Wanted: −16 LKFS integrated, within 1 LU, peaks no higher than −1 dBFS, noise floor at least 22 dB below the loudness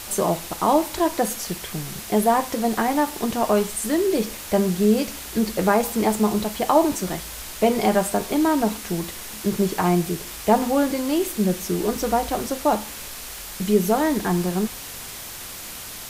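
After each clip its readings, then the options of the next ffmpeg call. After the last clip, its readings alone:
background noise floor −36 dBFS; target noise floor −45 dBFS; integrated loudness −22.5 LKFS; sample peak −4.5 dBFS; target loudness −16.0 LKFS
→ -af "afftdn=noise_reduction=9:noise_floor=-36"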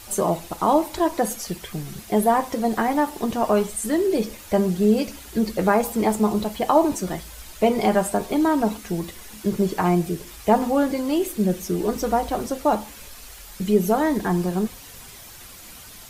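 background noise floor −43 dBFS; target noise floor −45 dBFS
→ -af "afftdn=noise_reduction=6:noise_floor=-43"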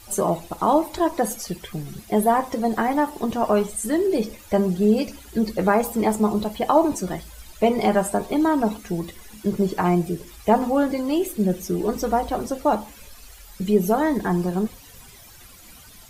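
background noise floor −46 dBFS; integrated loudness −22.5 LKFS; sample peak −4.5 dBFS; target loudness −16.0 LKFS
→ -af "volume=6.5dB,alimiter=limit=-1dB:level=0:latency=1"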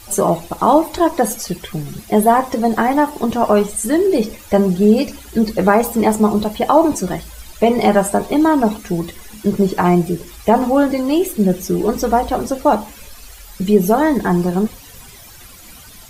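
integrated loudness −16.5 LKFS; sample peak −1.0 dBFS; background noise floor −40 dBFS

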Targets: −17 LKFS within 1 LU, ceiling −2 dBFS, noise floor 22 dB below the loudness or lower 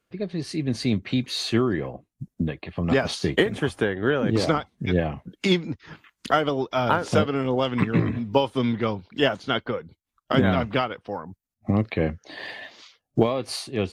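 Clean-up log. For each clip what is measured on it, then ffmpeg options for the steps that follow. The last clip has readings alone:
integrated loudness −25.0 LKFS; sample peak −7.0 dBFS; target loudness −17.0 LKFS
→ -af "volume=8dB,alimiter=limit=-2dB:level=0:latency=1"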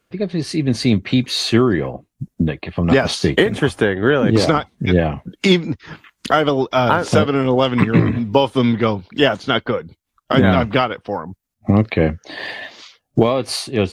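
integrated loudness −17.5 LKFS; sample peak −2.0 dBFS; background noise floor −75 dBFS

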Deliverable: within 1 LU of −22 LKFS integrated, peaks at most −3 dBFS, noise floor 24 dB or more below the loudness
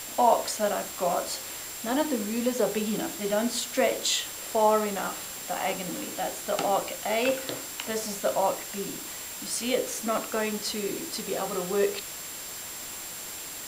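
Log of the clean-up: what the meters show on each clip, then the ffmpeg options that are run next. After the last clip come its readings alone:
interfering tone 7,400 Hz; level of the tone −42 dBFS; background noise floor −39 dBFS; target noise floor −53 dBFS; integrated loudness −28.5 LKFS; sample peak −8.5 dBFS; target loudness −22.0 LKFS
→ -af "bandreject=frequency=7400:width=30"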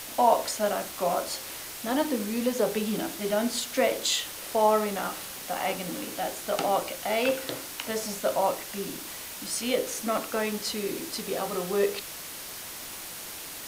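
interfering tone none found; background noise floor −40 dBFS; target noise floor −53 dBFS
→ -af "afftdn=noise_reduction=13:noise_floor=-40"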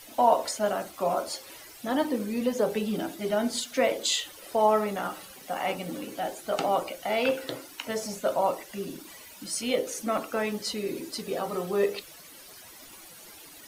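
background noise floor −49 dBFS; target noise floor −53 dBFS
→ -af "afftdn=noise_reduction=6:noise_floor=-49"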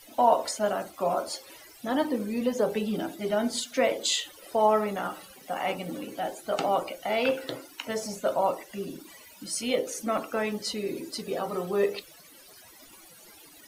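background noise floor −52 dBFS; target noise floor −53 dBFS
→ -af "afftdn=noise_reduction=6:noise_floor=-52"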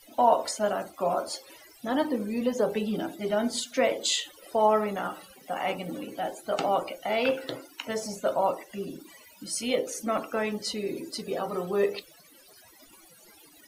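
background noise floor −55 dBFS; integrated loudness −29.0 LKFS; sample peak −9.0 dBFS; target loudness −22.0 LKFS
→ -af "volume=7dB,alimiter=limit=-3dB:level=0:latency=1"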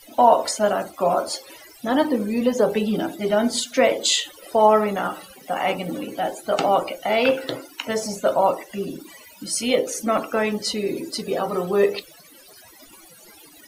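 integrated loudness −22.0 LKFS; sample peak −3.0 dBFS; background noise floor −48 dBFS

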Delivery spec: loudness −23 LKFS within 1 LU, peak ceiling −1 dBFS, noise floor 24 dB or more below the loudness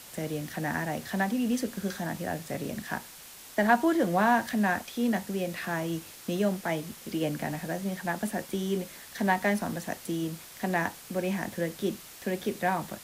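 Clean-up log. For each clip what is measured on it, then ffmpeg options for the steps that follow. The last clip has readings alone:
background noise floor −48 dBFS; target noise floor −55 dBFS; integrated loudness −30.5 LKFS; sample peak −9.5 dBFS; target loudness −23.0 LKFS
→ -af "afftdn=noise_reduction=7:noise_floor=-48"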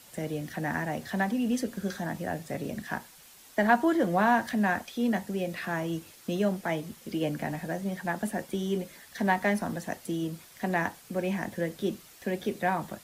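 background noise floor −53 dBFS; target noise floor −55 dBFS
→ -af "afftdn=noise_reduction=6:noise_floor=-53"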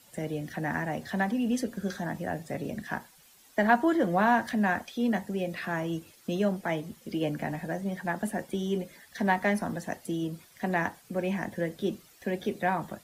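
background noise floor −58 dBFS; integrated loudness −30.5 LKFS; sample peak −9.5 dBFS; target loudness −23.0 LKFS
→ -af "volume=7.5dB"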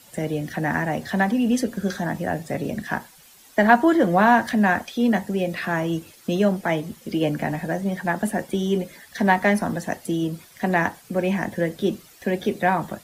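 integrated loudness −23.0 LKFS; sample peak −2.0 dBFS; background noise floor −51 dBFS

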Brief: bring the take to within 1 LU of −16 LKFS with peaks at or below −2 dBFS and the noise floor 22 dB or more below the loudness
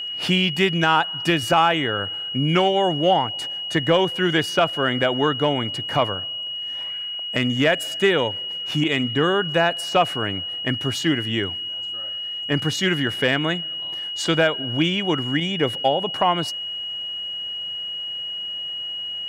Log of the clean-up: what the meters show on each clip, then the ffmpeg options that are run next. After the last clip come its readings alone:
interfering tone 2,900 Hz; level of the tone −27 dBFS; integrated loudness −21.5 LKFS; sample peak −5.5 dBFS; target loudness −16.0 LKFS
→ -af "bandreject=frequency=2900:width=30"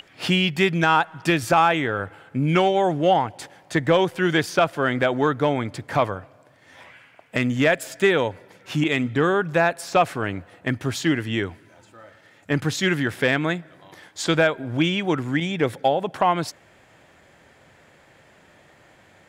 interfering tone none found; integrated loudness −22.0 LKFS; sample peak −6.5 dBFS; target loudness −16.0 LKFS
→ -af "volume=6dB,alimiter=limit=-2dB:level=0:latency=1"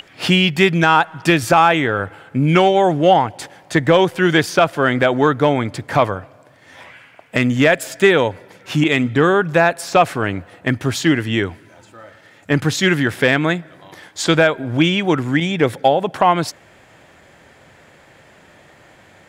integrated loudness −16.5 LKFS; sample peak −2.0 dBFS; background noise floor −49 dBFS

